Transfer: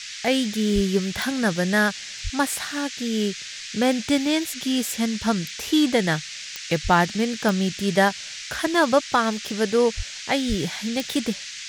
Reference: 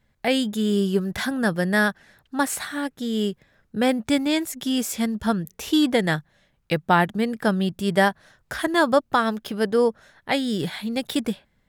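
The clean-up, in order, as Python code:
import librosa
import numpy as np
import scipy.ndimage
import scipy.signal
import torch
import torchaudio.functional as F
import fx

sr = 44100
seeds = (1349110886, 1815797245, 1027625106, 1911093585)

y = fx.fix_declick_ar(x, sr, threshold=10.0)
y = fx.fix_deplosive(y, sr, at_s=(0.74, 2.23, 6.83, 9.96, 10.48))
y = fx.noise_reduce(y, sr, print_start_s=6.2, print_end_s=6.7, reduce_db=28.0)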